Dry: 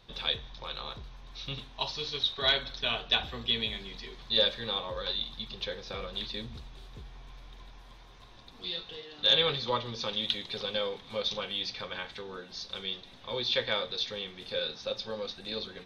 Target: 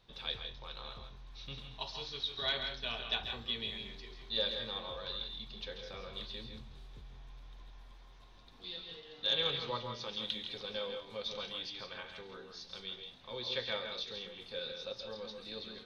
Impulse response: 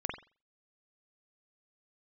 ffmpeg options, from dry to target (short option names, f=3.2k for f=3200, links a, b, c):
-filter_complex "[0:a]asplit=2[a][b];[1:a]atrim=start_sample=2205,asetrate=83790,aresample=44100,adelay=137[c];[b][c]afir=irnorm=-1:irlink=0,volume=-2.5dB[d];[a][d]amix=inputs=2:normalize=0,volume=-8.5dB"